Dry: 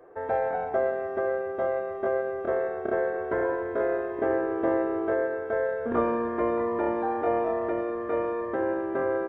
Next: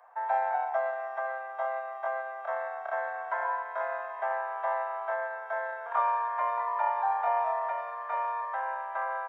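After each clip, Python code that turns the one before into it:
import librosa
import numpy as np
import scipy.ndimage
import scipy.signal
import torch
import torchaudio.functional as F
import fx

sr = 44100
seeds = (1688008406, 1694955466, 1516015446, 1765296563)

y = scipy.signal.sosfilt(scipy.signal.butter(8, 670.0, 'highpass', fs=sr, output='sos'), x)
y = fx.peak_eq(y, sr, hz=940.0, db=9.0, octaves=0.3)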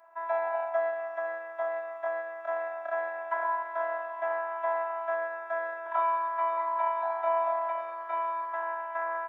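y = fx.robotise(x, sr, hz=331.0)
y = y * librosa.db_to_amplitude(2.0)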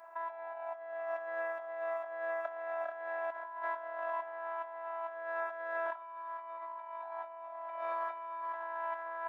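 y = fx.over_compress(x, sr, threshold_db=-39.0, ratio=-1.0)
y = y * librosa.db_to_amplitude(-2.0)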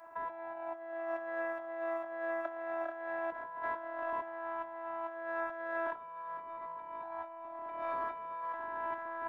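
y = fx.octave_divider(x, sr, octaves=1, level_db=2.0)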